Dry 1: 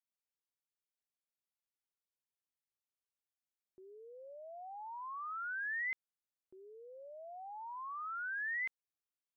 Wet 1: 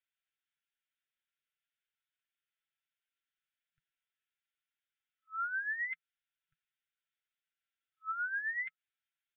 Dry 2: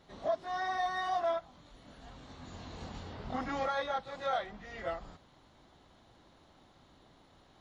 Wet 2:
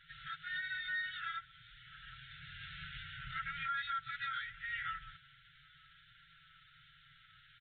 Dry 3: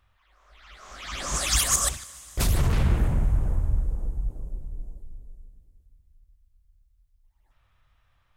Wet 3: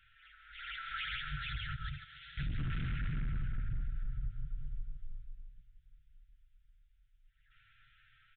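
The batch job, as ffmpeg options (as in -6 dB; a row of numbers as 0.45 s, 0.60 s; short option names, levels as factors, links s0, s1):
-filter_complex "[0:a]afftfilt=real='re*(1-between(b*sr/4096,170,1300))':imag='im*(1-between(b*sr/4096,170,1300))':win_size=4096:overlap=0.75,acrossover=split=820[s0][s1];[s1]acompressor=threshold=0.00631:ratio=6[s2];[s0][s2]amix=inputs=2:normalize=0,lowshelf=f=630:t=q:w=1.5:g=-11,flanger=delay=6.4:depth=1.7:regen=20:speed=0.32:shape=triangular,aresample=8000,asoftclip=type=hard:threshold=0.0168,aresample=44100,adynamicequalizer=threshold=0.00126:dfrequency=210:dqfactor=0.8:tfrequency=210:tqfactor=0.8:attack=5:release=100:ratio=0.375:range=2.5:mode=boostabove:tftype=bell,alimiter=level_in=7.08:limit=0.0631:level=0:latency=1:release=54,volume=0.141,volume=3.35"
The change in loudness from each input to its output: +4.0 LU, -4.5 LU, -15.0 LU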